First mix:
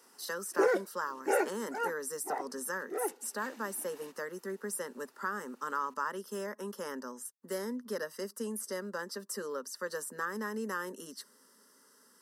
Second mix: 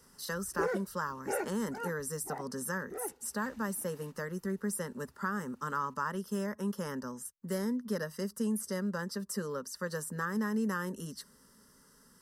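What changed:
background −6.0 dB
master: remove high-pass filter 270 Hz 24 dB per octave

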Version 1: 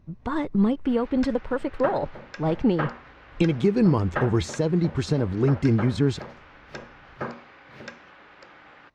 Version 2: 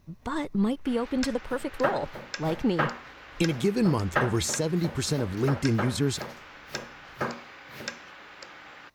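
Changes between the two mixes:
speech −5.0 dB
master: remove head-to-tape spacing loss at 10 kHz 21 dB

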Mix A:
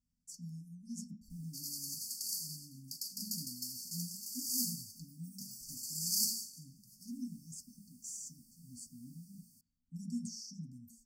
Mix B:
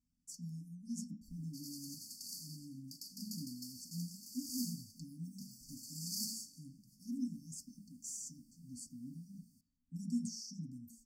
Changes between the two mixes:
background: add high-shelf EQ 4,300 Hz −11.5 dB
master: add parametric band 300 Hz +10 dB 0.39 octaves

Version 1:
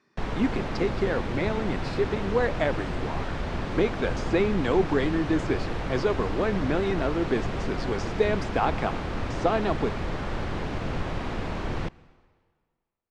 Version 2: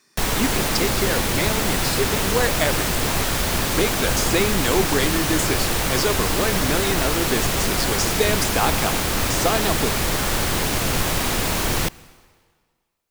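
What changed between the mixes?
background +5.5 dB
master: remove head-to-tape spacing loss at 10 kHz 34 dB

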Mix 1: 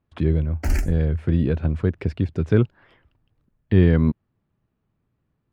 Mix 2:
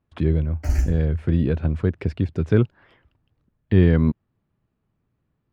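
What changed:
background −7.5 dB
reverb: on, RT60 0.40 s

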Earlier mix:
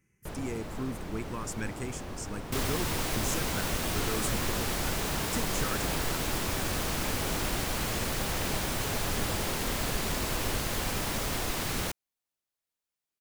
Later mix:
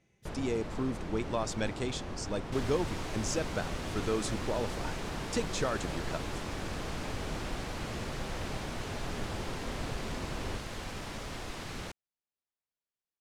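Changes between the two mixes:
speech: remove phaser with its sweep stopped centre 1,600 Hz, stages 4
second sound −7.5 dB
master: add high-frequency loss of the air 62 metres

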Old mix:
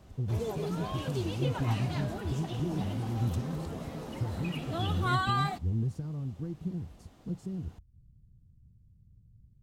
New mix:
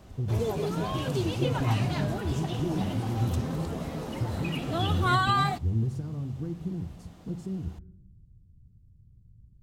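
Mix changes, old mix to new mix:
background +5.0 dB
reverb: on, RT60 0.85 s

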